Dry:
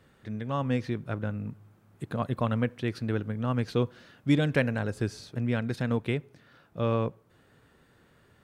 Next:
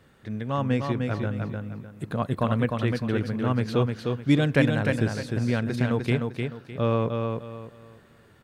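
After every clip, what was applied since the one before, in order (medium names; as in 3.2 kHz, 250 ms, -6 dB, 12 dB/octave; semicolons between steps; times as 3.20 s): feedback delay 304 ms, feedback 29%, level -4.5 dB; trim +3 dB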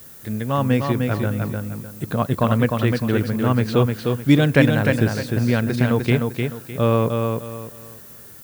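added noise violet -49 dBFS; trim +6 dB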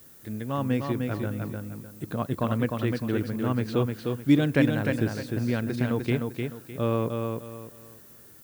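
peaking EQ 310 Hz +5.5 dB 0.55 oct; trim -9 dB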